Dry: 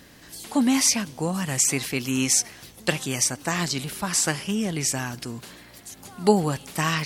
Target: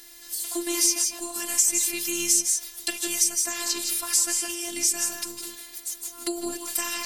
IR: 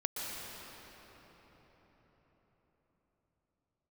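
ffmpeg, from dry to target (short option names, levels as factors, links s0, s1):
-filter_complex "[1:a]atrim=start_sample=2205,atrim=end_sample=6174,asetrate=33957,aresample=44100[s0];[0:a][s0]afir=irnorm=-1:irlink=0,acrossover=split=350[s1][s2];[s2]acompressor=threshold=0.0398:ratio=3[s3];[s1][s3]amix=inputs=2:normalize=0,crystalizer=i=6:c=0,afftfilt=real='hypot(re,im)*cos(PI*b)':imag='0':win_size=512:overlap=0.75,volume=0.562"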